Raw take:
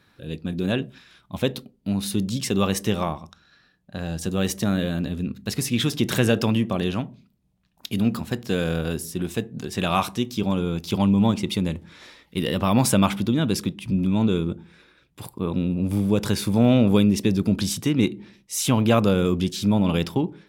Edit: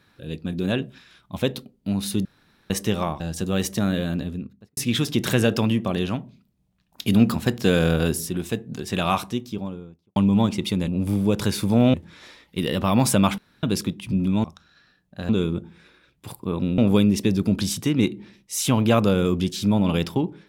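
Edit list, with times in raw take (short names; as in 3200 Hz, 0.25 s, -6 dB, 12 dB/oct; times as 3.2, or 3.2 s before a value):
2.25–2.7 room tone
3.2–4.05 move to 14.23
4.97–5.62 studio fade out
7.86–9.15 gain +5 dB
9.88–11.01 studio fade out
13.17–13.42 room tone
15.72–16.78 move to 11.73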